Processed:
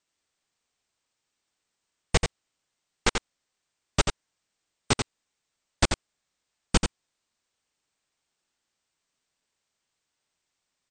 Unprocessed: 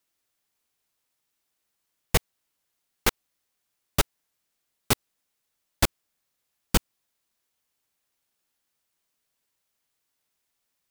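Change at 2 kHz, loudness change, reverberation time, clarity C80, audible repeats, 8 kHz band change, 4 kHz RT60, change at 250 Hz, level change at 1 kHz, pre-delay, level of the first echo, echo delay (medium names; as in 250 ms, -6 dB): +1.0 dB, -1.0 dB, no reverb, no reverb, 1, -0.5 dB, no reverb, +1.0 dB, +1.0 dB, no reverb, -6.0 dB, 87 ms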